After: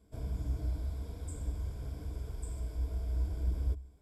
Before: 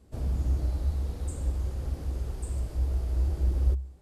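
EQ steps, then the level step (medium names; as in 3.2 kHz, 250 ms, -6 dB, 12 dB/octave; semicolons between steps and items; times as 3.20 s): rippled EQ curve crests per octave 1.7, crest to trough 10 dB; -7.5 dB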